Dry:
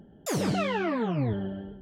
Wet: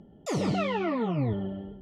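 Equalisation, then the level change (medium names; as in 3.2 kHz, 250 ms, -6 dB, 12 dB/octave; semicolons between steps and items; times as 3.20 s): Butterworth band-stop 1.6 kHz, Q 5.1; distance through air 70 m; 0.0 dB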